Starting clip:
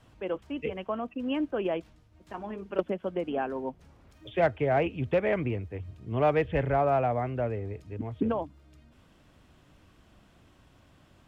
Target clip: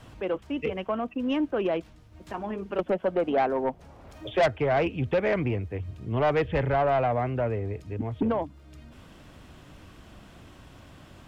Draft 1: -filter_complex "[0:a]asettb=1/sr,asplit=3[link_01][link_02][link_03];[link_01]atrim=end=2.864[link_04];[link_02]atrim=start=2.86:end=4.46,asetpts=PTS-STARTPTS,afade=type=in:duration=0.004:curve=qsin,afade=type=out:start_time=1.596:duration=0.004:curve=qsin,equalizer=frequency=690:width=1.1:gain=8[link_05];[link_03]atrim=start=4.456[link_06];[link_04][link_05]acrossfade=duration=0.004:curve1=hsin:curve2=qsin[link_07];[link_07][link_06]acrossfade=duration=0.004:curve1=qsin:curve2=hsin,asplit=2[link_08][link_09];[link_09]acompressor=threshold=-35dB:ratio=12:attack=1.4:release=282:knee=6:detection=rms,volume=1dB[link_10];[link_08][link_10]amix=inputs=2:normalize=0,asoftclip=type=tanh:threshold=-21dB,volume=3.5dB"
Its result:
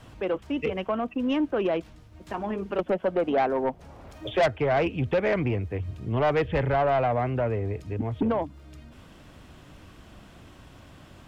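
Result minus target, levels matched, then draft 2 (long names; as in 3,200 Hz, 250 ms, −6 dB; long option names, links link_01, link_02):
downward compressor: peak gain reduction −11 dB
-filter_complex "[0:a]asettb=1/sr,asplit=3[link_01][link_02][link_03];[link_01]atrim=end=2.864[link_04];[link_02]atrim=start=2.86:end=4.46,asetpts=PTS-STARTPTS,afade=type=in:duration=0.004:curve=qsin,afade=type=out:start_time=1.596:duration=0.004:curve=qsin,equalizer=frequency=690:width=1.1:gain=8[link_05];[link_03]atrim=start=4.456[link_06];[link_04][link_05]acrossfade=duration=0.004:curve1=hsin:curve2=qsin[link_07];[link_07][link_06]acrossfade=duration=0.004:curve1=qsin:curve2=hsin,asplit=2[link_08][link_09];[link_09]acompressor=threshold=-47dB:ratio=12:attack=1.4:release=282:knee=6:detection=rms,volume=1dB[link_10];[link_08][link_10]amix=inputs=2:normalize=0,asoftclip=type=tanh:threshold=-21dB,volume=3.5dB"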